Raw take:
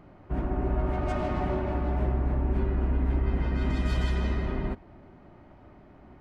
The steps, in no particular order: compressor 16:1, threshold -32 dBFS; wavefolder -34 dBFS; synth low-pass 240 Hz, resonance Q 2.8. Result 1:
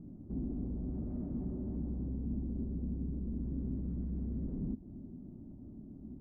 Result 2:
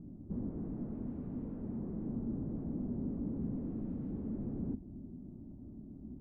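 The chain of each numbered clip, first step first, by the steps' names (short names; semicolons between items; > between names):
compressor > wavefolder > synth low-pass; wavefolder > compressor > synth low-pass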